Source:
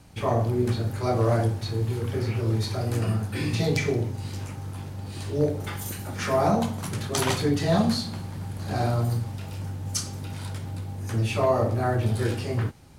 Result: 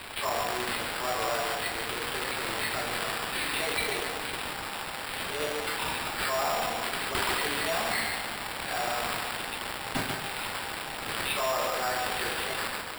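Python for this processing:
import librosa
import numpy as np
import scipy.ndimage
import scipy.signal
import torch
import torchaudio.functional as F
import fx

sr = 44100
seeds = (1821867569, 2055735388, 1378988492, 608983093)

p1 = x + fx.echo_filtered(x, sr, ms=143, feedback_pct=47, hz=4000.0, wet_db=-10.0, dry=0)
p2 = fx.quant_companded(p1, sr, bits=4)
p3 = scipy.signal.sosfilt(scipy.signal.butter(2, 930.0, 'highpass', fs=sr, output='sos'), p2)
p4 = p3 + 10.0 ** (-8.5 / 20.0) * np.pad(p3, (int(139 * sr / 1000.0), 0))[:len(p3)]
p5 = fx.sample_hold(p4, sr, seeds[0], rate_hz=6300.0, jitter_pct=0)
p6 = 10.0 ** (-22.0 / 20.0) * np.tanh(p5 / 10.0 ** (-22.0 / 20.0))
y = fx.env_flatten(p6, sr, amount_pct=50)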